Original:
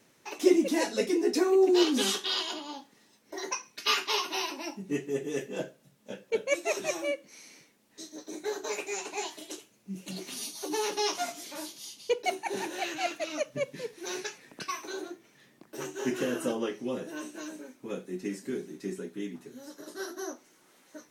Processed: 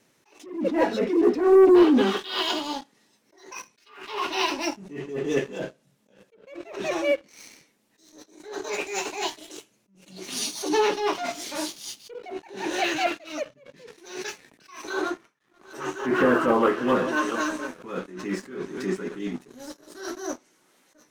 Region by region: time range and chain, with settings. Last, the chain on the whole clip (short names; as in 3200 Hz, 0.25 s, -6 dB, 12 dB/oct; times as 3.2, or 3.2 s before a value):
14.9–19.19 reverse delay 0.418 s, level -12 dB + gate with hold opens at -48 dBFS, closes at -53 dBFS + bell 1200 Hz +13 dB 1 oct
whole clip: treble ducked by the level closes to 1500 Hz, closed at -23.5 dBFS; sample leveller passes 2; attack slew limiter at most 100 dB/s; gain +3 dB